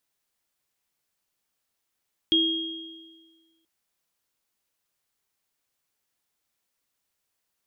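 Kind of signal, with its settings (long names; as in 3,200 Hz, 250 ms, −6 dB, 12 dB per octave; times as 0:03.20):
inharmonic partials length 1.33 s, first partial 326 Hz, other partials 3,260 Hz, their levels 4 dB, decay 1.58 s, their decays 1.40 s, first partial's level −21.5 dB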